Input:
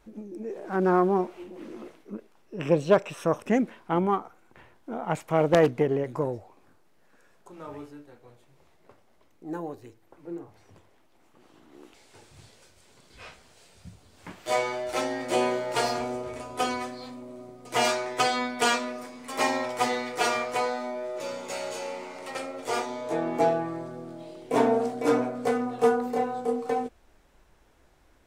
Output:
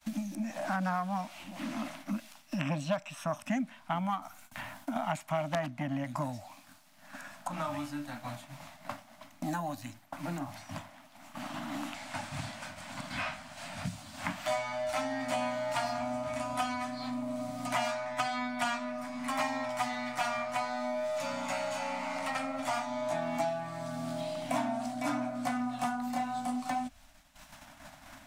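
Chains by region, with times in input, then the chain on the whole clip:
0:04.22–0:04.96: noise gate with hold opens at −50 dBFS, closes at −54 dBFS + high-shelf EQ 7,400 Hz +9 dB + compressor whose output falls as the input rises −40 dBFS
whole clip: downward expander −51 dBFS; Chebyshev band-stop filter 280–610 Hz, order 3; multiband upward and downward compressor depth 100%; level −3.5 dB

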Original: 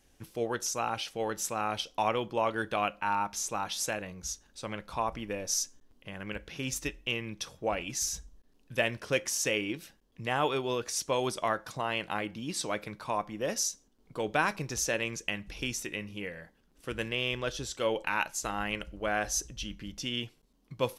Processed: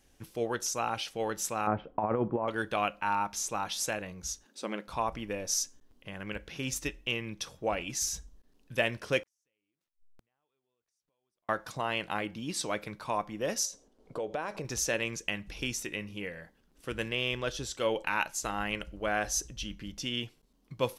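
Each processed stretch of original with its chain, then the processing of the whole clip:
0:01.67–0:02.48: low-pass filter 1,600 Hz 24 dB per octave + parametric band 180 Hz +7 dB 2.9 octaves + compressor whose output falls as the input rises −28 dBFS, ratio −0.5
0:04.45–0:04.88: linear-phase brick-wall high-pass 170 Hz + parametric band 320 Hz +5.5 dB 1.3 octaves
0:09.23–0:11.49: hold until the input has moved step −44 dBFS + downward compressor 3 to 1, threshold −49 dBFS + gate with flip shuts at −44 dBFS, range −37 dB
0:13.65–0:14.65: parametric band 550 Hz +12 dB 1.4 octaves + downward compressor 3 to 1, threshold −35 dBFS + low-pass filter 11,000 Hz
whole clip: no processing

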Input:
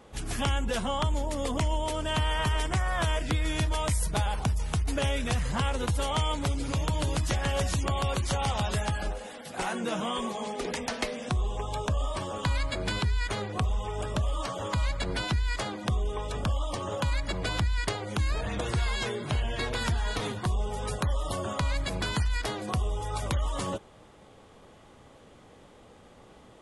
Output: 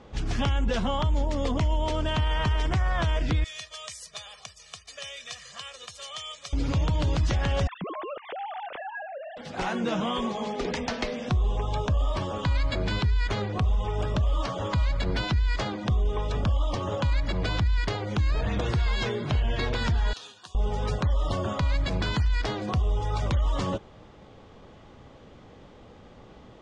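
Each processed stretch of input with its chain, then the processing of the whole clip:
0:03.44–0:06.53: high-pass filter 83 Hz 6 dB per octave + first difference + comb filter 1.7 ms, depth 88%
0:07.67–0:09.37: three sine waves on the formant tracks + high-frequency loss of the air 390 metres + downward compressor 2.5 to 1, threshold −39 dBFS
0:20.13–0:20.55: Butterworth band-reject 2,100 Hz, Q 3.5 + first difference + double-tracking delay 12 ms −12 dB
whole clip: low-pass filter 6,100 Hz 24 dB per octave; low-shelf EQ 280 Hz +5.5 dB; brickwall limiter −19 dBFS; level +1.5 dB

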